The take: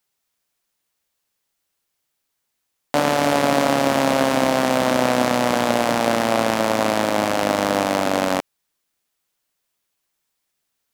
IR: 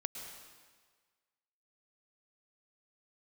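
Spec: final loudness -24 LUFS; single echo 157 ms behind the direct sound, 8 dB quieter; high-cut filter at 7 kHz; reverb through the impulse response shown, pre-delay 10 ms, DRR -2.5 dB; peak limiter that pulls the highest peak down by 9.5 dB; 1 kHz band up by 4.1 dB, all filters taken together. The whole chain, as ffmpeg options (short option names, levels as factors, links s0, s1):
-filter_complex "[0:a]lowpass=7000,equalizer=f=1000:t=o:g=5.5,alimiter=limit=0.316:level=0:latency=1,aecho=1:1:157:0.398,asplit=2[s0][s1];[1:a]atrim=start_sample=2205,adelay=10[s2];[s1][s2]afir=irnorm=-1:irlink=0,volume=1.33[s3];[s0][s3]amix=inputs=2:normalize=0,volume=0.531"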